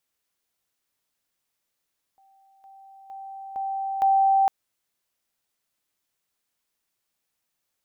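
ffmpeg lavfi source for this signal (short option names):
-f lavfi -i "aevalsrc='pow(10,(-56+10*floor(t/0.46))/20)*sin(2*PI*779*t)':d=2.3:s=44100"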